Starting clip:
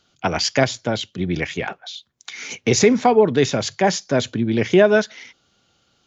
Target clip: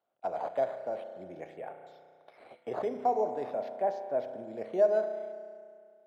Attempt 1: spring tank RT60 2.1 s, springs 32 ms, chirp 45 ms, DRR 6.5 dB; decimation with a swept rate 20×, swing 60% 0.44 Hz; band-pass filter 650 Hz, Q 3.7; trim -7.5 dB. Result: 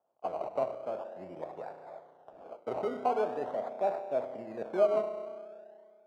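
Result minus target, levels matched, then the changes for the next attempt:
decimation with a swept rate: distortion +9 dB
change: decimation with a swept rate 6×, swing 60% 0.44 Hz

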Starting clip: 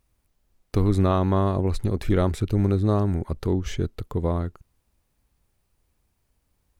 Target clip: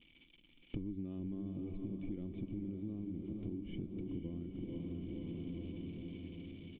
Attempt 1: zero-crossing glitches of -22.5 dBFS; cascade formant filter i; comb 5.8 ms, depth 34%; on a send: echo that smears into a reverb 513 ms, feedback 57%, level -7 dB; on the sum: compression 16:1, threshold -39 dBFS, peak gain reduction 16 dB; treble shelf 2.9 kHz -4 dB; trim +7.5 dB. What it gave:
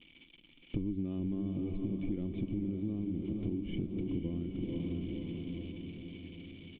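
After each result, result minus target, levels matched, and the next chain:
compression: peak gain reduction -6.5 dB; zero-crossing glitches: distortion +6 dB
zero-crossing glitches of -22.5 dBFS; cascade formant filter i; comb 5.8 ms, depth 34%; on a send: echo that smears into a reverb 513 ms, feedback 57%, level -7 dB; on the sum: compression 16:1, threshold -46 dBFS, peak gain reduction 22.5 dB; treble shelf 2.9 kHz -4 dB; trim +7.5 dB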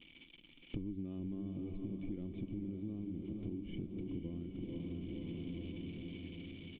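zero-crossing glitches: distortion +6 dB
zero-crossing glitches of -28.5 dBFS; cascade formant filter i; comb 5.8 ms, depth 34%; on a send: echo that smears into a reverb 513 ms, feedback 57%, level -7 dB; on the sum: compression 16:1, threshold -46 dBFS, peak gain reduction 22.5 dB; treble shelf 2.9 kHz -4 dB; trim +7.5 dB

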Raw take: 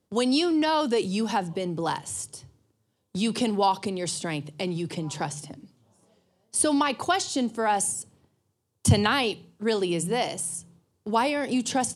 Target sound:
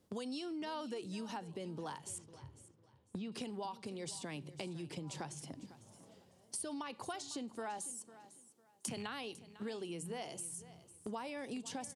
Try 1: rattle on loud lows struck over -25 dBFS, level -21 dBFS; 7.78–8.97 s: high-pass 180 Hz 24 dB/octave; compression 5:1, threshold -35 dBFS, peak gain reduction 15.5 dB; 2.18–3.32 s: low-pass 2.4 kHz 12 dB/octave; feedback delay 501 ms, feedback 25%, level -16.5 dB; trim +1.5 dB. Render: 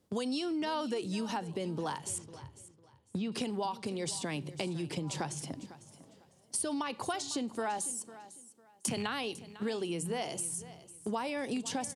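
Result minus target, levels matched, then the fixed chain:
compression: peak gain reduction -8 dB
rattle on loud lows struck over -25 dBFS, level -21 dBFS; 7.78–8.97 s: high-pass 180 Hz 24 dB/octave; compression 5:1, threshold -45 dBFS, peak gain reduction 23.5 dB; 2.18–3.32 s: low-pass 2.4 kHz 12 dB/octave; feedback delay 501 ms, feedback 25%, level -16.5 dB; trim +1.5 dB

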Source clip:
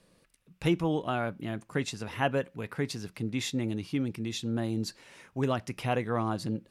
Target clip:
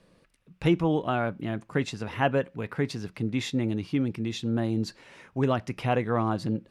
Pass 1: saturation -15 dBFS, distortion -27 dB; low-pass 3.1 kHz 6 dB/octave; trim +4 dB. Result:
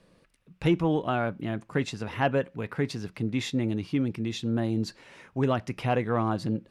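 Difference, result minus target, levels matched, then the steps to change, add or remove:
saturation: distortion +16 dB
change: saturation -6.5 dBFS, distortion -42 dB

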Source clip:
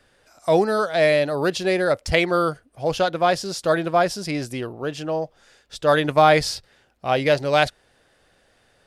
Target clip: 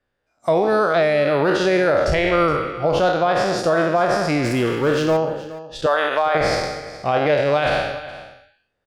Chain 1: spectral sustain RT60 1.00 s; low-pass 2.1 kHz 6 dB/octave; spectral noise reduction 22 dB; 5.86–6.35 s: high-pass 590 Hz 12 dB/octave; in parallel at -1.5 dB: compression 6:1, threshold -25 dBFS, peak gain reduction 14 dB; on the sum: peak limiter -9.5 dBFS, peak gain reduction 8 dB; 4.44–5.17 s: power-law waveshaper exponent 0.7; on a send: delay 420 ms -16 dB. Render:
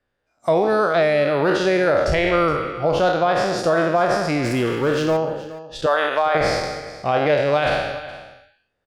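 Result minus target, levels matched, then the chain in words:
compression: peak gain reduction +5.5 dB
spectral sustain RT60 1.00 s; low-pass 2.1 kHz 6 dB/octave; spectral noise reduction 22 dB; 5.86–6.35 s: high-pass 590 Hz 12 dB/octave; in parallel at -1.5 dB: compression 6:1, threshold -18.5 dBFS, peak gain reduction 8.5 dB; on the sum: peak limiter -9.5 dBFS, peak gain reduction 9 dB; 4.44–5.17 s: power-law waveshaper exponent 0.7; on a send: delay 420 ms -16 dB

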